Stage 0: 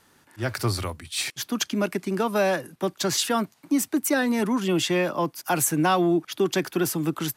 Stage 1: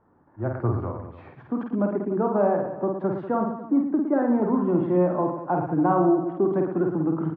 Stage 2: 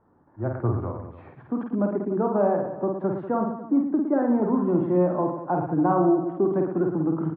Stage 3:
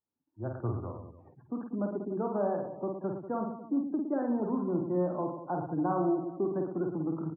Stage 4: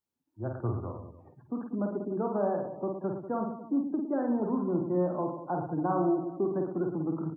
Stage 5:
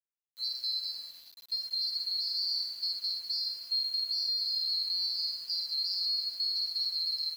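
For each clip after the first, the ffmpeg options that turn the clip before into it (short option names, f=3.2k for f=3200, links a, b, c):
-af "lowpass=f=1.1k:w=0.5412,lowpass=f=1.1k:w=1.3066,aecho=1:1:50|112.5|190.6|288.3|410.4:0.631|0.398|0.251|0.158|0.1"
-af "lowpass=f=1.9k:p=1"
-af "afftdn=nr=26:nf=-44,volume=-8.5dB"
-af "bandreject=f=302.9:t=h:w=4,bandreject=f=605.8:t=h:w=4,bandreject=f=908.7:t=h:w=4,bandreject=f=1.2116k:t=h:w=4,bandreject=f=1.5145k:t=h:w=4,bandreject=f=1.8174k:t=h:w=4,bandreject=f=2.1203k:t=h:w=4,bandreject=f=2.4232k:t=h:w=4,bandreject=f=2.7261k:t=h:w=4,bandreject=f=3.029k:t=h:w=4,bandreject=f=3.3319k:t=h:w=4,bandreject=f=3.6348k:t=h:w=4,bandreject=f=3.9377k:t=h:w=4,bandreject=f=4.2406k:t=h:w=4,bandreject=f=4.5435k:t=h:w=4,bandreject=f=4.8464k:t=h:w=4,bandreject=f=5.1493k:t=h:w=4,bandreject=f=5.4522k:t=h:w=4,bandreject=f=5.7551k:t=h:w=4,bandreject=f=6.058k:t=h:w=4,bandreject=f=6.3609k:t=h:w=4,bandreject=f=6.6638k:t=h:w=4,bandreject=f=6.9667k:t=h:w=4,bandreject=f=7.2696k:t=h:w=4,bandreject=f=7.5725k:t=h:w=4,bandreject=f=7.8754k:t=h:w=4,bandreject=f=8.1783k:t=h:w=4,bandreject=f=8.4812k:t=h:w=4,bandreject=f=8.7841k:t=h:w=4,bandreject=f=9.087k:t=h:w=4,bandreject=f=9.3899k:t=h:w=4,bandreject=f=9.6928k:t=h:w=4,bandreject=f=9.9957k:t=h:w=4,bandreject=f=10.2986k:t=h:w=4,bandreject=f=10.6015k:t=h:w=4,bandreject=f=10.9044k:t=h:w=4,bandreject=f=11.2073k:t=h:w=4,bandreject=f=11.5102k:t=h:w=4,volume=1.5dB"
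-af "afftfilt=real='real(if(lt(b,736),b+184*(1-2*mod(floor(b/184),2)),b),0)':imag='imag(if(lt(b,736),b+184*(1-2*mod(floor(b/184),2)),b),0)':win_size=2048:overlap=0.75,alimiter=level_in=1dB:limit=-24dB:level=0:latency=1:release=17,volume=-1dB,acrusher=bits=8:mix=0:aa=0.000001"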